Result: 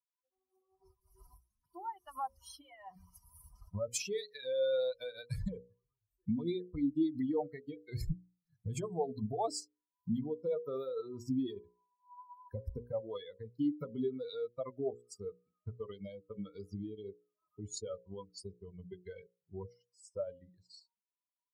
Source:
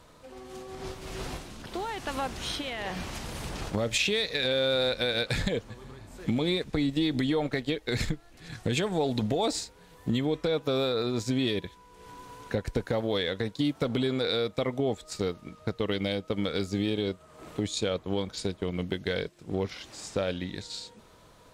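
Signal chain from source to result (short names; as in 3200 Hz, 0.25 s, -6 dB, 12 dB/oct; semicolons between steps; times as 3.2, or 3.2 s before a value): per-bin expansion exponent 3; band shelf 2400 Hz -13.5 dB; notches 60/120/180/240/300/360/420/480/540 Hz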